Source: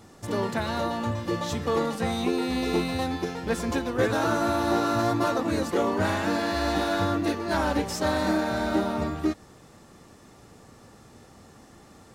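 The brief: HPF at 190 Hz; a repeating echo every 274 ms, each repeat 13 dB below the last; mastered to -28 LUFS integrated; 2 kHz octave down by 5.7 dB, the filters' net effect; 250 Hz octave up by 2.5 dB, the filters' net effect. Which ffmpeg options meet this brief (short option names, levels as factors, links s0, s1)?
-af "highpass=190,equalizer=f=250:t=o:g=4.5,equalizer=f=2000:t=o:g=-8,aecho=1:1:274|548|822:0.224|0.0493|0.0108,volume=0.794"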